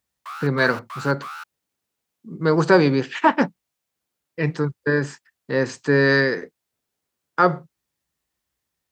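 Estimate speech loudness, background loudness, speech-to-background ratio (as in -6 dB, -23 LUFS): -21.0 LUFS, -36.0 LUFS, 15.0 dB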